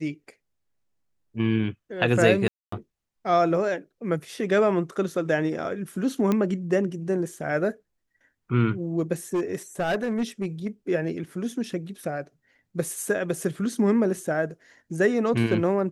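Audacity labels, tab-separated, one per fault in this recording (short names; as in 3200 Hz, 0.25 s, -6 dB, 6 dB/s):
2.480000	2.720000	gap 0.244 s
6.320000	6.320000	pop -12 dBFS
9.340000	10.680000	clipped -21 dBFS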